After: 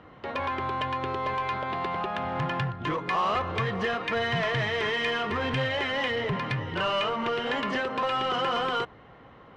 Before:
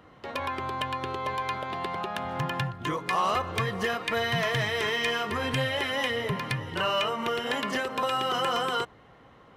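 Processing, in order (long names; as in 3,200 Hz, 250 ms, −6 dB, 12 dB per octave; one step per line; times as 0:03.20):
in parallel at −6.5 dB: wave folding −30.5 dBFS
on the sum: low-pass filter 3,500 Hz 12 dB per octave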